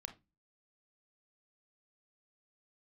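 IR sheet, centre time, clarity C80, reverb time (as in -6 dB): 9 ms, 22.5 dB, 0.20 s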